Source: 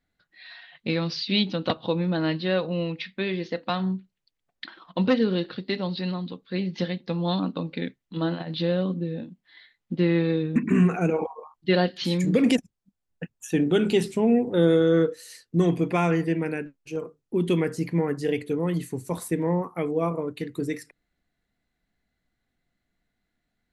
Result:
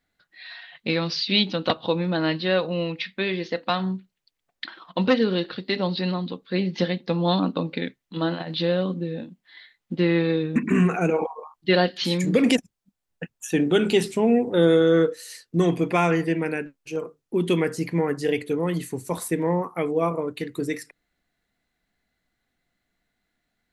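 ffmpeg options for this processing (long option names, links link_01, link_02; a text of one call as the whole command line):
ffmpeg -i in.wav -filter_complex "[0:a]asettb=1/sr,asplit=3[link_01][link_02][link_03];[link_01]atrim=end=5.764[link_04];[link_02]atrim=start=5.76:end=7.78,asetpts=PTS-STARTPTS,afade=type=in:duration=0.004:curve=qsin,afade=type=out:start_time=2.016:duration=0.004:curve=qsin,equalizer=frequency=300:width=0.34:gain=3.5[link_05];[link_03]atrim=start=7.776[link_06];[link_04][link_05]acrossfade=duration=0.004:curve1=hsin:curve2=qsin[link_07];[link_07][link_06]acrossfade=duration=0.004:curve1=qsin:curve2=hsin,lowshelf=frequency=320:gain=-6.5,volume=4.5dB" out.wav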